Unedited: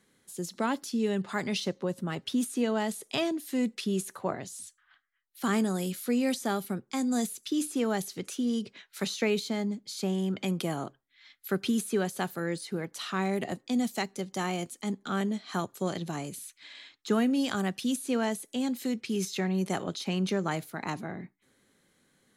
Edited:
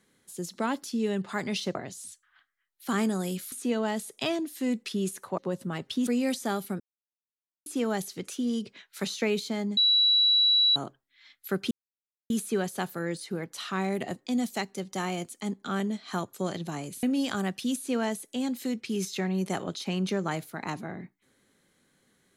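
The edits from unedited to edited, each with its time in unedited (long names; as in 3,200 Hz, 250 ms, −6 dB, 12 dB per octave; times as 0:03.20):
0:01.75–0:02.44: swap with 0:04.30–0:06.07
0:06.80–0:07.66: silence
0:09.77–0:10.76: beep over 3,920 Hz −18.5 dBFS
0:11.71: splice in silence 0.59 s
0:16.44–0:17.23: remove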